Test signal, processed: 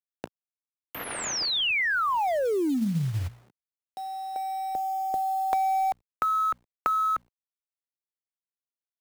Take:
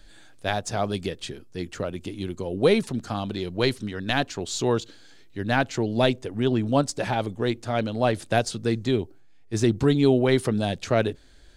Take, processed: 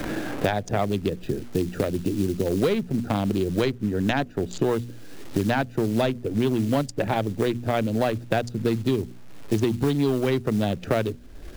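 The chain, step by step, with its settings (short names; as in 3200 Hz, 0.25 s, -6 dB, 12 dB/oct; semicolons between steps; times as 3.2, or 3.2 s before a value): Wiener smoothing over 41 samples; high shelf 10000 Hz -11 dB; notches 60/120/180/240 Hz; in parallel at -2 dB: compressor 12:1, threshold -30 dBFS; on the sum: companded quantiser 6-bit; soft clip -11.5 dBFS; three-band squash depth 100%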